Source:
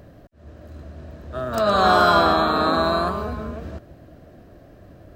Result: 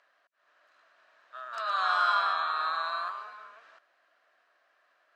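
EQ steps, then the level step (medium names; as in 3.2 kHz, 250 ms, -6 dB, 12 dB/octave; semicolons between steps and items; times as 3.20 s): ladder band-pass 1.5 kHz, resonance 30%; tilt EQ +4.5 dB/octave; 0.0 dB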